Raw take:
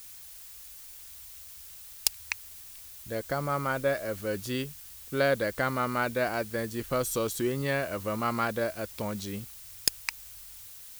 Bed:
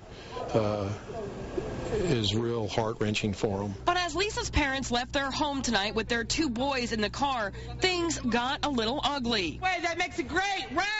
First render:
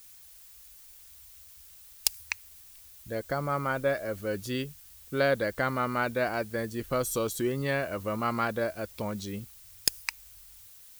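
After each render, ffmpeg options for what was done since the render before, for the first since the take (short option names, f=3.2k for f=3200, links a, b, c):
-af "afftdn=nr=6:nf=-47"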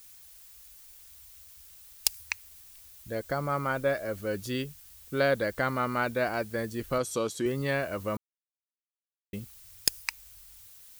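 -filter_complex "[0:a]asettb=1/sr,asplit=3[a][b][c];[a]atrim=end=6.984[d];[b]atrim=start=6.98:end=7.46,asetpts=PTS-STARTPTS,afade=t=in:d=0.004:c=qsin,afade=t=out:st=0.476:d=0.004:c=qsin,highpass=130,lowpass=7.8k[e];[c]atrim=start=7.456[f];[d][e]acrossfade=d=0.004:c1=hsin:c2=qsin[g];[g][f]acrossfade=d=0.004:c1=qsin:c2=hsin,asplit=3[h][i][j];[h]atrim=end=8.17,asetpts=PTS-STARTPTS,afade=t=out:st=8.166:d=0.004:c=hsin[k];[i]atrim=start=8.17:end=9.33,asetpts=PTS-STARTPTS,volume=0[l];[j]atrim=start=9.33,asetpts=PTS-STARTPTS,afade=t=in:d=0.004:c=hsin[m];[k][l][m]concat=n=3:v=0:a=1"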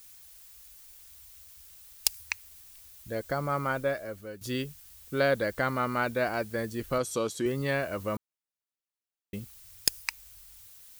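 -filter_complex "[0:a]asplit=2[a][b];[a]atrim=end=4.41,asetpts=PTS-STARTPTS,afade=t=out:st=3.71:d=0.7:silence=0.199526[c];[b]atrim=start=4.41,asetpts=PTS-STARTPTS,afade=t=in:d=0.004:c=hsin:silence=0.199526[d];[c][d]concat=n=2:v=0:a=1"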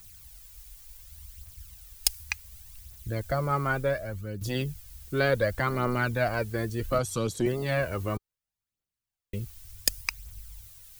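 -filter_complex "[0:a]aphaser=in_gain=1:out_gain=1:delay=2.9:decay=0.47:speed=0.68:type=triangular,acrossover=split=160|3200[a][b][c];[a]aeval=exprs='0.0299*sin(PI/2*2.82*val(0)/0.0299)':c=same[d];[d][b][c]amix=inputs=3:normalize=0"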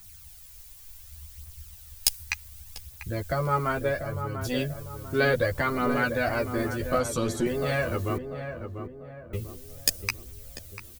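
-filter_complex "[0:a]asplit=2[a][b];[b]adelay=12,volume=-3dB[c];[a][c]amix=inputs=2:normalize=0,asplit=2[d][e];[e]adelay=693,lowpass=f=1.3k:p=1,volume=-7.5dB,asplit=2[f][g];[g]adelay=693,lowpass=f=1.3k:p=1,volume=0.45,asplit=2[h][i];[i]adelay=693,lowpass=f=1.3k:p=1,volume=0.45,asplit=2[j][k];[k]adelay=693,lowpass=f=1.3k:p=1,volume=0.45,asplit=2[l][m];[m]adelay=693,lowpass=f=1.3k:p=1,volume=0.45[n];[d][f][h][j][l][n]amix=inputs=6:normalize=0"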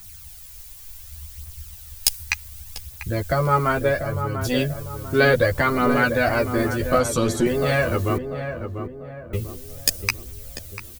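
-af "volume=6.5dB,alimiter=limit=-2dB:level=0:latency=1"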